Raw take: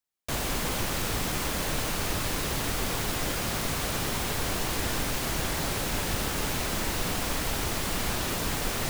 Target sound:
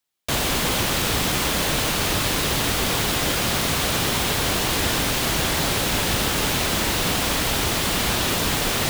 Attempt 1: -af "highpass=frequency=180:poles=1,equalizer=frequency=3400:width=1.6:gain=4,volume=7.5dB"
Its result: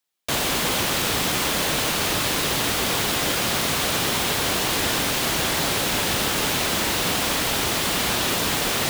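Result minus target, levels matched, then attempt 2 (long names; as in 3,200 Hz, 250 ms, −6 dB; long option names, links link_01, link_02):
125 Hz band −4.0 dB
-af "highpass=frequency=51:poles=1,equalizer=frequency=3400:width=1.6:gain=4,volume=7.5dB"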